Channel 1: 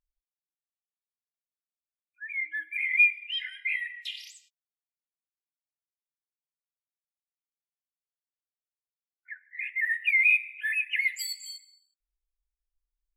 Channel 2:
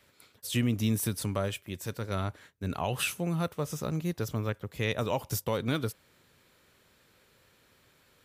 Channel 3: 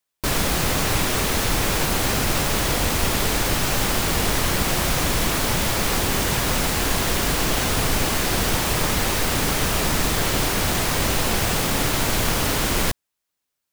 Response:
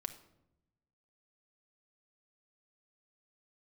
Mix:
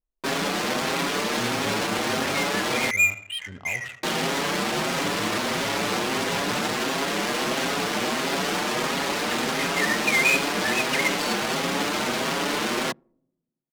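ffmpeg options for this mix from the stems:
-filter_complex "[0:a]asoftclip=type=hard:threshold=-17dB,volume=-2.5dB,asplit=3[a][b][c];[b]volume=-4dB[d];[c]volume=-16dB[e];[1:a]adelay=850,volume=-8.5dB,asplit=2[f][g];[g]volume=-11dB[h];[2:a]highpass=f=190:w=0.5412,highpass=f=190:w=1.3066,asplit=2[i][j];[j]adelay=6.2,afreqshift=1.5[k];[i][k]amix=inputs=2:normalize=1,volume=1dB,asplit=3[l][m][n];[l]atrim=end=2.91,asetpts=PTS-STARTPTS,afade=t=out:st=2.906:d=0.004:c=hsin[o];[m]atrim=start=2.91:end=4.03,asetpts=PTS-STARTPTS,volume=0[p];[n]atrim=start=4.03,asetpts=PTS-STARTPTS,afade=t=in:d=0.004:c=hsin[q];[o][p][q]concat=n=3:v=0:a=1,asplit=2[r][s];[s]volume=-15dB[t];[3:a]atrim=start_sample=2205[u];[d][t]amix=inputs=2:normalize=0[v];[v][u]afir=irnorm=-1:irlink=0[w];[e][h]amix=inputs=2:normalize=0,aecho=0:1:86|172|258|344|430|516:1|0.45|0.202|0.0911|0.041|0.0185[x];[a][f][r][w][x]amix=inputs=5:normalize=0,adynamicsmooth=sensitivity=6.5:basefreq=580"

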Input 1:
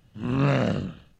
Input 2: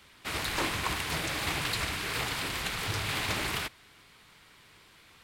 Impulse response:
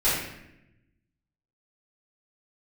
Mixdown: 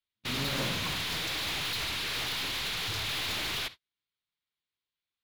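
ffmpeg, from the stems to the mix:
-filter_complex "[0:a]volume=-16dB,asplit=2[a][b];[b]volume=-16dB[c];[1:a]equalizer=f=3.7k:t=o:w=1.1:g=10.5,aeval=exprs='(tanh(44.7*val(0)+0.2)-tanh(0.2))/44.7':c=same,volume=2dB[d];[2:a]atrim=start_sample=2205[e];[c][e]afir=irnorm=-1:irlink=0[f];[a][d][f]amix=inputs=3:normalize=0,agate=range=-43dB:threshold=-41dB:ratio=16:detection=peak,equalizer=f=8.5k:w=3.6:g=-7"

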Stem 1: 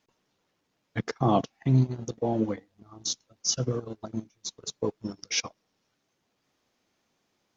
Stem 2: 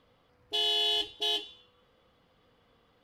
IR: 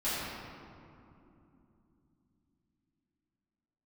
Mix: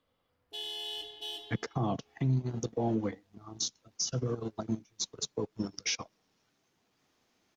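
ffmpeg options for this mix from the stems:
-filter_complex "[0:a]bandreject=f=560:w=12,adelay=550,volume=1.5dB[a];[1:a]highshelf=f=7.9k:g=10,volume=-13.5dB,asplit=2[b][c];[c]volume=-12dB[d];[2:a]atrim=start_sample=2205[e];[d][e]afir=irnorm=-1:irlink=0[f];[a][b][f]amix=inputs=3:normalize=0,acrossover=split=160[g][h];[h]acompressor=threshold=-25dB:ratio=6[i];[g][i]amix=inputs=2:normalize=0,alimiter=limit=-21.5dB:level=0:latency=1:release=174"

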